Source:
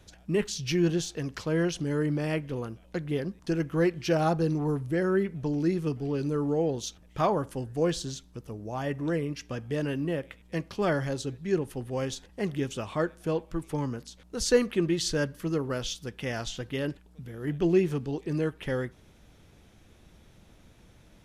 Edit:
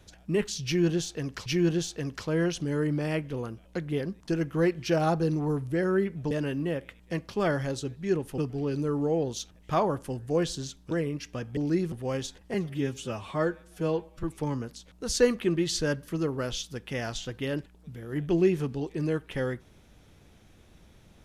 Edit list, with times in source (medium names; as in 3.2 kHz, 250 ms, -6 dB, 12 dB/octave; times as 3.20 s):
0.65–1.46 s: loop, 2 plays
5.50–5.85 s: swap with 9.73–11.80 s
8.38–9.07 s: delete
12.42–13.55 s: stretch 1.5×